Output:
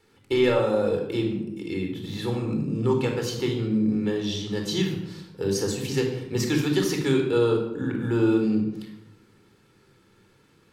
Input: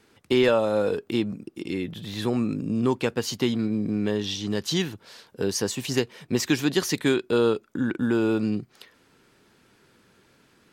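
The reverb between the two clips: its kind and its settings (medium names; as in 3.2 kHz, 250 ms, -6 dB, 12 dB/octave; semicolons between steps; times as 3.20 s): simulated room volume 2500 m³, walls furnished, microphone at 4.2 m; trim -5.5 dB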